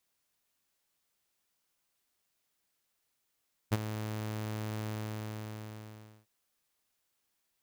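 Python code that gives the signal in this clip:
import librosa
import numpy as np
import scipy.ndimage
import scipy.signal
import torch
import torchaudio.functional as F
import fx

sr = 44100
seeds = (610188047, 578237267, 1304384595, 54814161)

y = fx.adsr_tone(sr, wave='saw', hz=108.0, attack_ms=24.0, decay_ms=31.0, sustain_db=-12.0, held_s=1.17, release_ms=1380.0, level_db=-20.5)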